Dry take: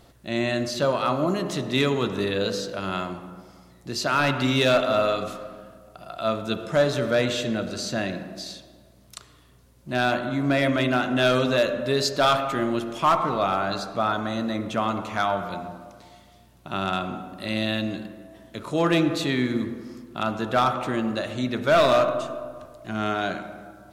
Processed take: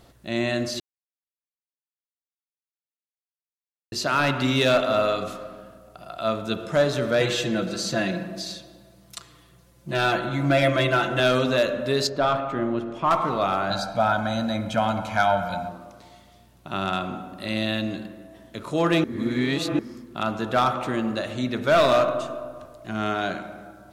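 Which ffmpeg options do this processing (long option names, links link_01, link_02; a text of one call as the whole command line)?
ffmpeg -i in.wav -filter_complex "[0:a]asettb=1/sr,asplit=3[link_01][link_02][link_03];[link_01]atrim=end=7.204[link_04];[link_02]atrim=start=7.2:end=11.2,asetpts=PTS-STARTPTS,afade=type=in:duration=0.004:curve=qsin,afade=type=out:start_time=3.996:duration=0.004:curve=qsin,aecho=1:1:5.9:0.89,atrim=end_sample=176400[link_05];[link_03]atrim=start=11.196[link_06];[link_04][link_05]acrossfade=duration=0.004:curve1=hsin:curve2=qsin[link_07];[link_07][link_06]acrossfade=duration=0.004:curve1=qsin:curve2=hsin,asettb=1/sr,asplit=3[link_08][link_09][link_10];[link_08]atrim=end=12.074[link_11];[link_09]atrim=start=12.07:end=13.11,asetpts=PTS-STARTPTS,afade=type=in:duration=0.004:curve=qsin,afade=type=out:start_time=1.036:duration=0.004:curve=qsin,lowpass=frequency=1200:poles=1[link_12];[link_10]atrim=start=13.106[link_13];[link_11][link_12]acrossfade=duration=0.004:curve1=hsin:curve2=qsin[link_14];[link_14][link_13]acrossfade=duration=0.004:curve1=qsin:curve2=hsin,asettb=1/sr,asplit=3[link_15][link_16][link_17];[link_15]atrim=end=13.704[link_18];[link_16]atrim=start=13.7:end=15.69,asetpts=PTS-STARTPTS,afade=type=in:duration=0.004:curve=qsin,afade=type=out:start_time=1.986:duration=0.004:curve=qsin,aecho=1:1:1.3:0.89,atrim=end_sample=87759[link_19];[link_17]atrim=start=15.686[link_20];[link_18][link_19]acrossfade=duration=0.004:curve1=hsin:curve2=qsin[link_21];[link_21][link_20]acrossfade=duration=0.004:curve1=qsin:curve2=hsin,asplit=5[link_22][link_23][link_24][link_25][link_26];[link_22]atrim=end=0.8,asetpts=PTS-STARTPTS,afade=type=out:start_time=0.796:duration=0.004:curve=hsin[link_27];[link_23]atrim=start=0.8:end=3.92,asetpts=PTS-STARTPTS,volume=0[link_28];[link_24]atrim=start=3.92:end=19.042,asetpts=PTS-STARTPTS,afade=type=in:duration=0.004:curve=hsin[link_29];[link_25]atrim=start=19.038:end=19.792,asetpts=PTS-STARTPTS,areverse[link_30];[link_26]atrim=start=19.788[link_31];[link_27][link_28][link_29]concat=n=3:v=0:a=1[link_32];[link_32][link_30]acrossfade=duration=0.004:curve1=hsin:curve2=hsin[link_33];[link_33][link_31]acrossfade=duration=0.004:curve1=hsin:curve2=hsin" out.wav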